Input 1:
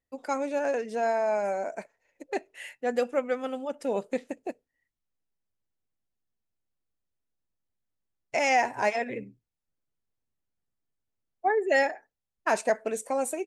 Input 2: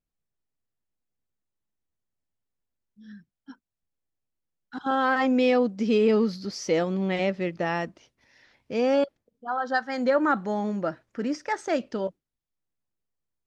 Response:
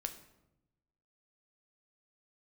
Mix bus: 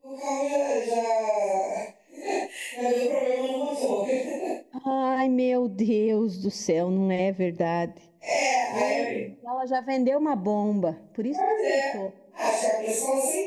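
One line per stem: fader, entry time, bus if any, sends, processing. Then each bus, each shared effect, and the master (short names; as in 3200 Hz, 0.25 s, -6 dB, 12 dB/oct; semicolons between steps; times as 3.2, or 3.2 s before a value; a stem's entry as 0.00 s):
+1.5 dB, 0.00 s, send -14 dB, phase scrambler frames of 0.2 s; tone controls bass -5 dB, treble +5 dB
+1.5 dB, 0.00 s, send -15 dB, bell 3700 Hz -10 dB 1.4 oct; auto duck -12 dB, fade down 0.30 s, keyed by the first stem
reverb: on, RT60 0.90 s, pre-delay 8 ms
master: AGC gain up to 5 dB; Butterworth band-stop 1400 Hz, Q 1.6; compressor 6:1, threshold -21 dBFS, peak gain reduction 10.5 dB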